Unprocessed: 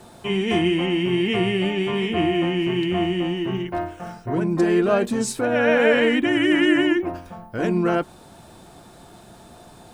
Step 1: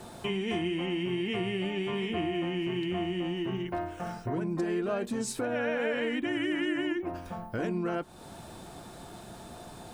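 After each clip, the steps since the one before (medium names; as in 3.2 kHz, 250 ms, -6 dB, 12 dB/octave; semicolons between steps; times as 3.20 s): compression 3:1, threshold -32 dBFS, peak gain reduction 14 dB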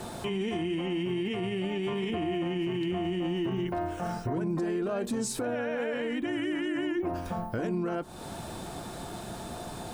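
peak limiter -29.5 dBFS, peak gain reduction 10 dB; dynamic bell 2.3 kHz, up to -4 dB, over -52 dBFS, Q 0.92; trim +6.5 dB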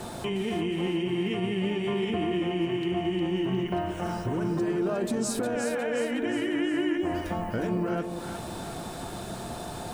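two-band feedback delay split 660 Hz, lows 174 ms, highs 359 ms, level -6.5 dB; trim +1.5 dB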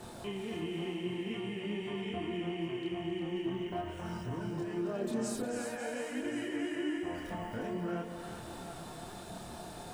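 thinning echo 269 ms, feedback 69%, high-pass 480 Hz, level -8 dB; chorus voices 2, 0.48 Hz, delay 27 ms, depth 3.7 ms; trim -6 dB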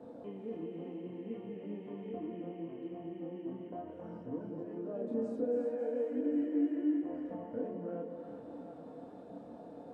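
two resonant band-passes 370 Hz, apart 0.73 oct; trim +7.5 dB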